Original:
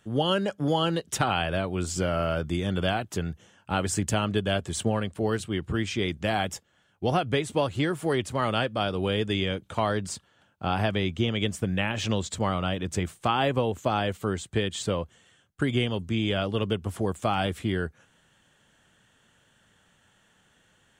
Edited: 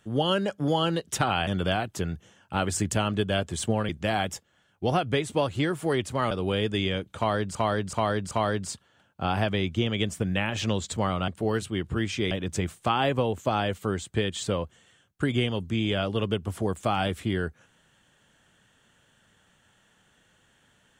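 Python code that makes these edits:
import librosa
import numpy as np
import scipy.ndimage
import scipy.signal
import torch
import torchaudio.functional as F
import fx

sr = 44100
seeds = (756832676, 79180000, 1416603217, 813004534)

y = fx.edit(x, sr, fx.cut(start_s=1.47, length_s=1.17),
    fx.move(start_s=5.06, length_s=1.03, to_s=12.7),
    fx.cut(start_s=8.51, length_s=0.36),
    fx.repeat(start_s=9.73, length_s=0.38, count=4), tone=tone)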